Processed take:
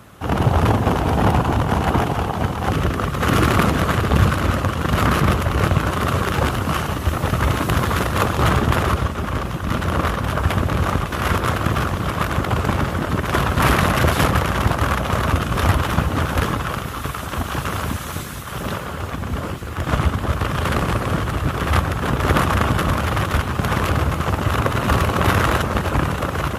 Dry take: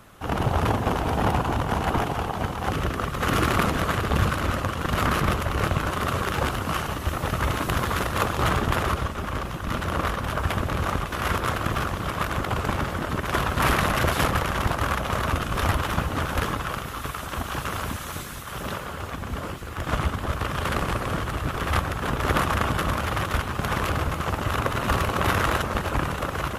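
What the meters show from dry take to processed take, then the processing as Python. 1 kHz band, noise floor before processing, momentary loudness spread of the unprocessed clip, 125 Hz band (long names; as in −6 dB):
+4.5 dB, −34 dBFS, 8 LU, +7.5 dB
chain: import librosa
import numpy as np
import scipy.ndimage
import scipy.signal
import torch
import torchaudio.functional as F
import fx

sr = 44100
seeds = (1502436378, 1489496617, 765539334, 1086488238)

y = scipy.signal.sosfilt(scipy.signal.butter(2, 59.0, 'highpass', fs=sr, output='sos'), x)
y = fx.low_shelf(y, sr, hz=320.0, db=5.0)
y = y * 10.0 ** (4.0 / 20.0)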